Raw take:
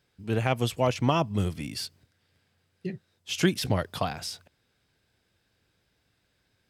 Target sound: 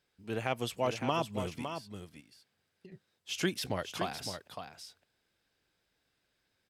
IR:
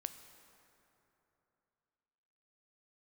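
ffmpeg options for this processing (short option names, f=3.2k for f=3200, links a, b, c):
-filter_complex "[0:a]equalizer=f=93:t=o:w=2.3:g=-8.5,asettb=1/sr,asplit=3[a][b][c];[a]atrim=end=1.644[d];[b]atrim=start=1.64:end=2.92,asetpts=PTS-STARTPTS,afade=t=in:d=0.004:c=qsin,afade=t=out:st=1.276:d=0.004:c=qsin,acompressor=threshold=-47dB:ratio=5[e];[c]atrim=start=2.916[f];[d][e]acrossfade=d=0.004:c1=hsin:c2=qsin[g];[g][f]acrossfade=d=0.004:c1=qsin:c2=hsin,aecho=1:1:560:0.398,volume=-5.5dB"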